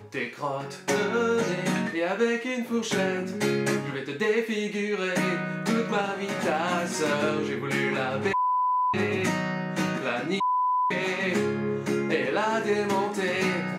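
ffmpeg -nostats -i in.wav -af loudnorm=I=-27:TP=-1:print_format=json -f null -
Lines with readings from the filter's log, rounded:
"input_i" : "-26.5",
"input_tp" : "-12.9",
"input_lra" : "1.2",
"input_thresh" : "-36.5",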